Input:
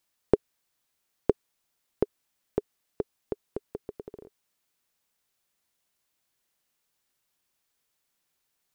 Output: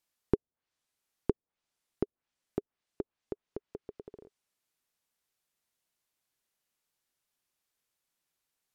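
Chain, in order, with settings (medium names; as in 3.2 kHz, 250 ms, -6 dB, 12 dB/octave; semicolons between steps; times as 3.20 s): low-pass that closes with the level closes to 540 Hz, closed at -29.5 dBFS; trim -5.5 dB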